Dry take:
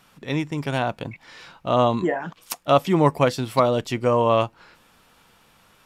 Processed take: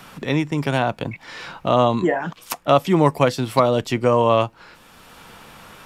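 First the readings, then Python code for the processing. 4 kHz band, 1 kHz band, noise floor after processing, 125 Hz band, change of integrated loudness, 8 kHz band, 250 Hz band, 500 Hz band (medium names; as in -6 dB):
+2.5 dB, +2.0 dB, -50 dBFS, +2.5 dB, +2.0 dB, +2.0 dB, +3.0 dB, +2.5 dB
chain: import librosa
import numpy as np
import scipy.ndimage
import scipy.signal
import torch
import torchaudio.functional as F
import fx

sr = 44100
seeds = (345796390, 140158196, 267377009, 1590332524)

y = fx.band_squash(x, sr, depth_pct=40)
y = F.gain(torch.from_numpy(y), 2.5).numpy()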